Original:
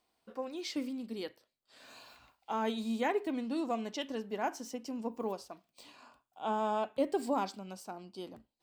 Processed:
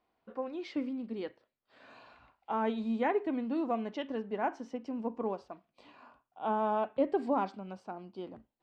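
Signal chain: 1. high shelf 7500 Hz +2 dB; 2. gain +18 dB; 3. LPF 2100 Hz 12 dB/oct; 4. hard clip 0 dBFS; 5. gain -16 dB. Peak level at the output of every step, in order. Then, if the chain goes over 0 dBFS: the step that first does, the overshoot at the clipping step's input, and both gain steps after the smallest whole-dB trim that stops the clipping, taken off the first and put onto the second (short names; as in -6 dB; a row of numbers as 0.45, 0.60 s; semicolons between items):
-19.5, -1.5, -1.5, -1.5, -17.5 dBFS; no overload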